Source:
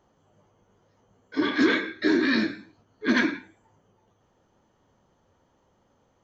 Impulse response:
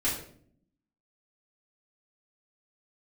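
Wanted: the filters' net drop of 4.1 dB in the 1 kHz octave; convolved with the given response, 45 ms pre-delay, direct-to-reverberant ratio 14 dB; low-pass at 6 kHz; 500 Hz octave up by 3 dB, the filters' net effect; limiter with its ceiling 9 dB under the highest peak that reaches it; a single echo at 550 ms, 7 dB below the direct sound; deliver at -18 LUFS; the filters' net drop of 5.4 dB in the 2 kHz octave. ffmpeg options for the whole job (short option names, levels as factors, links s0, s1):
-filter_complex "[0:a]lowpass=6000,equalizer=f=500:t=o:g=5.5,equalizer=f=1000:t=o:g=-4.5,equalizer=f=2000:t=o:g=-5.5,alimiter=limit=0.112:level=0:latency=1,aecho=1:1:550:0.447,asplit=2[s0][s1];[1:a]atrim=start_sample=2205,adelay=45[s2];[s1][s2]afir=irnorm=-1:irlink=0,volume=0.0794[s3];[s0][s3]amix=inputs=2:normalize=0,volume=3.76"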